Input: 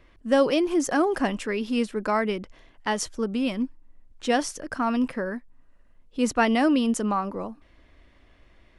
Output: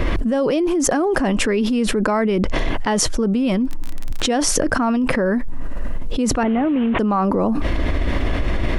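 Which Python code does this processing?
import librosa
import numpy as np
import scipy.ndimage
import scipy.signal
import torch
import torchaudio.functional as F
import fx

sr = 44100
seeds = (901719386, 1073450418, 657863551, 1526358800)

y = fx.delta_mod(x, sr, bps=16000, step_db=-29.5, at=(6.43, 6.99))
y = fx.tilt_shelf(y, sr, db=4.0, hz=970.0)
y = fx.dmg_crackle(y, sr, seeds[0], per_s=23.0, level_db=-43.0, at=(3.64, 4.41), fade=0.02)
y = fx.env_flatten(y, sr, amount_pct=100)
y = y * librosa.db_to_amplitude(-3.5)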